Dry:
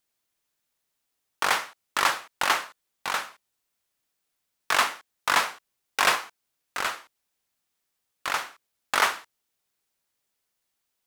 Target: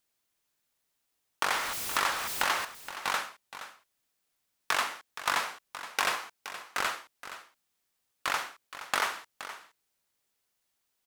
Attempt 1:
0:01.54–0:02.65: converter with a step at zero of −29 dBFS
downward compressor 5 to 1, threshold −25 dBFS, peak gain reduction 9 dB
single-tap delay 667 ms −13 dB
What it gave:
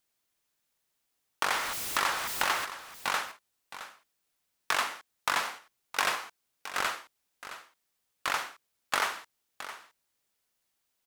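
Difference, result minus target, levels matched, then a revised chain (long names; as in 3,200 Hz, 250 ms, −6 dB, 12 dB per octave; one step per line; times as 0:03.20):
echo 196 ms late
0:01.54–0:02.65: converter with a step at zero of −29 dBFS
downward compressor 5 to 1, threshold −25 dBFS, peak gain reduction 9 dB
single-tap delay 471 ms −13 dB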